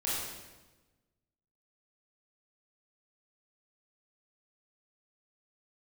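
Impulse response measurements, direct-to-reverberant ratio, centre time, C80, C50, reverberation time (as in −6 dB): −8.0 dB, 92 ms, 1.0 dB, −2.0 dB, 1.2 s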